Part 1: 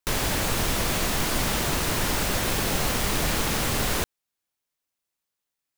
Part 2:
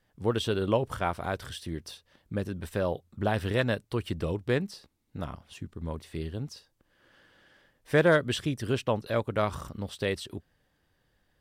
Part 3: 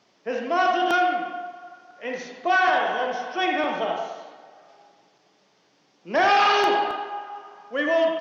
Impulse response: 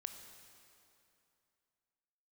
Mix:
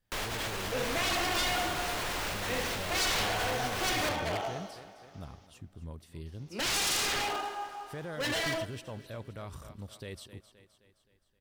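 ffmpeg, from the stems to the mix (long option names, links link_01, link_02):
-filter_complex "[0:a]acrossover=split=380 3700:gain=0.2 1 0.126[link_01][link_02][link_03];[link_01][link_02][link_03]amix=inputs=3:normalize=0,asoftclip=type=tanh:threshold=-34dB,adelay=50,volume=-2.5dB,asplit=2[link_04][link_05];[link_05]volume=-6.5dB[link_06];[1:a]volume=-13.5dB,asplit=2[link_07][link_08];[link_08]volume=-14dB[link_09];[2:a]aeval=exprs='0.075*(abs(mod(val(0)/0.075+3,4)-2)-1)':channel_layout=same,adelay=450,volume=-8.5dB,asplit=3[link_10][link_11][link_12];[link_10]atrim=end=5.47,asetpts=PTS-STARTPTS,afade=type=out:start_time=5.466:duration=0.004:curve=hsin[link_13];[link_11]atrim=start=5.47:end=6.26,asetpts=PTS-STARTPTS,volume=0[link_14];[link_12]atrim=start=6.26,asetpts=PTS-STARTPTS,afade=type=in:duration=0.004:curve=hsin[link_15];[link_13][link_14][link_15]concat=n=3:v=0:a=1,asplit=3[link_16][link_17][link_18];[link_17]volume=-5.5dB[link_19];[link_18]volume=-20dB[link_20];[link_04][link_07]amix=inputs=2:normalize=0,lowshelf=frequency=160:gain=10,alimiter=level_in=7dB:limit=-24dB:level=0:latency=1:release=19,volume=-7dB,volume=0dB[link_21];[3:a]atrim=start_sample=2205[link_22];[link_06][link_19]amix=inputs=2:normalize=0[link_23];[link_23][link_22]afir=irnorm=-1:irlink=0[link_24];[link_09][link_20]amix=inputs=2:normalize=0,aecho=0:1:261|522|783|1044|1305|1566|1827|2088:1|0.52|0.27|0.141|0.0731|0.038|0.0198|0.0103[link_25];[link_16][link_21][link_24][link_25]amix=inputs=4:normalize=0,highshelf=frequency=4300:gain=9.5"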